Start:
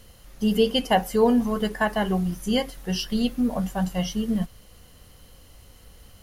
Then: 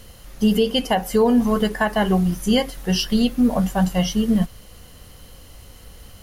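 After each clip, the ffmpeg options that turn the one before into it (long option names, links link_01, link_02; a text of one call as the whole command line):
ffmpeg -i in.wav -af "alimiter=limit=-15dB:level=0:latency=1:release=209,volume=6.5dB" out.wav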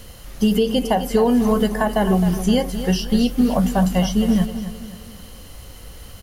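ffmpeg -i in.wav -filter_complex "[0:a]acrossover=split=1000|6300[link_01][link_02][link_03];[link_01]acompressor=threshold=-17dB:ratio=4[link_04];[link_02]acompressor=threshold=-34dB:ratio=4[link_05];[link_03]acompressor=threshold=-40dB:ratio=4[link_06];[link_04][link_05][link_06]amix=inputs=3:normalize=0,asplit=2[link_07][link_08];[link_08]aecho=0:1:262|524|786|1048:0.282|0.116|0.0474|0.0194[link_09];[link_07][link_09]amix=inputs=2:normalize=0,volume=3.5dB" out.wav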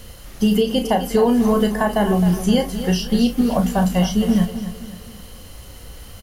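ffmpeg -i in.wav -filter_complex "[0:a]asplit=2[link_01][link_02];[link_02]adelay=34,volume=-8dB[link_03];[link_01][link_03]amix=inputs=2:normalize=0" out.wav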